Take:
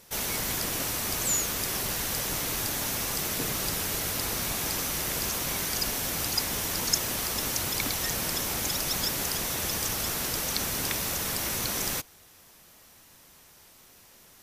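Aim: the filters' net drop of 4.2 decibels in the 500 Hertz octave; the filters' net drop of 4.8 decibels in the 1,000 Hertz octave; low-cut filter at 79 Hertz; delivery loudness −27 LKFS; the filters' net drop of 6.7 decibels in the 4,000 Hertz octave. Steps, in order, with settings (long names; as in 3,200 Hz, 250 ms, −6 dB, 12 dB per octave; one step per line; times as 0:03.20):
high-pass filter 79 Hz
parametric band 500 Hz −4 dB
parametric band 1,000 Hz −4.5 dB
parametric band 4,000 Hz −9 dB
level +3 dB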